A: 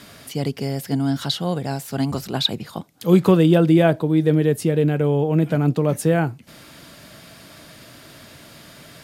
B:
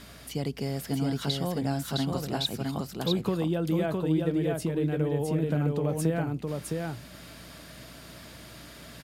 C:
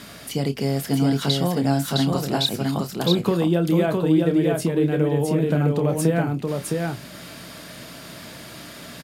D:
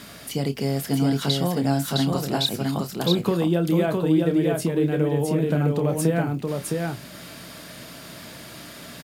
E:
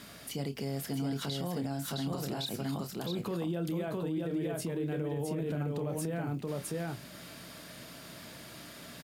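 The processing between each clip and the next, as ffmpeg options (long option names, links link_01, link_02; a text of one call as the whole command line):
ffmpeg -i in.wav -filter_complex "[0:a]acompressor=threshold=-21dB:ratio=4,aeval=exprs='val(0)+0.00447*(sin(2*PI*60*n/s)+sin(2*PI*2*60*n/s)/2+sin(2*PI*3*60*n/s)/3+sin(2*PI*4*60*n/s)/4+sin(2*PI*5*60*n/s)/5)':channel_layout=same,asplit=2[link_01][link_02];[link_02]aecho=0:1:661:0.708[link_03];[link_01][link_03]amix=inputs=2:normalize=0,volume=-5dB" out.wav
ffmpeg -i in.wav -filter_complex "[0:a]highpass=110,asplit=2[link_01][link_02];[link_02]adelay=29,volume=-10dB[link_03];[link_01][link_03]amix=inputs=2:normalize=0,volume=7.5dB" out.wav
ffmpeg -i in.wav -af "highshelf=frequency=11000:gain=3,acrusher=bits=9:mix=0:aa=0.000001,volume=-1.5dB" out.wav
ffmpeg -i in.wav -af "alimiter=limit=-19dB:level=0:latency=1:release=59,volume=-7.5dB" out.wav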